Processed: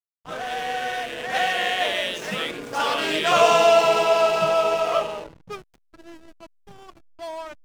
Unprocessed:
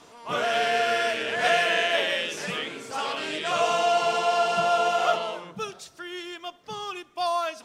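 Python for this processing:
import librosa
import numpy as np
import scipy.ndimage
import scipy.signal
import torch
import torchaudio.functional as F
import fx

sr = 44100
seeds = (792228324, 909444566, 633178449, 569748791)

y = fx.doppler_pass(x, sr, speed_mps=24, closest_m=19.0, pass_at_s=3.3)
y = fx.backlash(y, sr, play_db=-37.5)
y = y * librosa.db_to_amplitude(8.0)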